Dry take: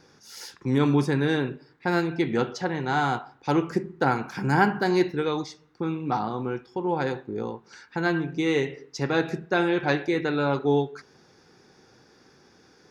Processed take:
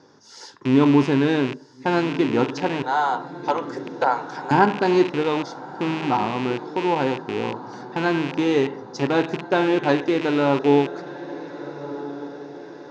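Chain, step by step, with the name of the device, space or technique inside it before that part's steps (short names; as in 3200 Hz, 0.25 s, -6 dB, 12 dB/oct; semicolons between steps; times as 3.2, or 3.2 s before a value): 2.82–4.51 steep high-pass 460 Hz 48 dB/oct; diffused feedback echo 1.451 s, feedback 50%, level -14 dB; car door speaker with a rattle (rattling part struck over -36 dBFS, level -18 dBFS; speaker cabinet 110–7200 Hz, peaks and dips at 110 Hz +6 dB, 270 Hz +8 dB, 400 Hz +5 dB, 600 Hz +6 dB, 960 Hz +9 dB, 2400 Hz -8 dB)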